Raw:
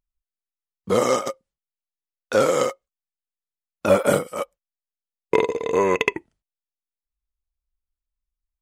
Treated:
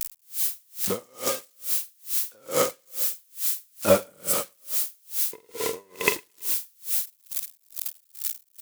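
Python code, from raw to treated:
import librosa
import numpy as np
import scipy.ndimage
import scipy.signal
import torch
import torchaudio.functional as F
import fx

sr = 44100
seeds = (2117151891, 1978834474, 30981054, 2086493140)

p1 = x + 0.5 * 10.0 ** (-12.5 / 20.0) * np.diff(np.sign(x), prepend=np.sign(x[:1]))
p2 = p1 + fx.echo_feedback(p1, sr, ms=110, feedback_pct=51, wet_db=-9.5, dry=0)
p3 = p2 * 10.0 ** (-39 * (0.5 - 0.5 * np.cos(2.0 * np.pi * 2.3 * np.arange(len(p2)) / sr)) / 20.0)
y = p3 * librosa.db_to_amplitude(-1.0)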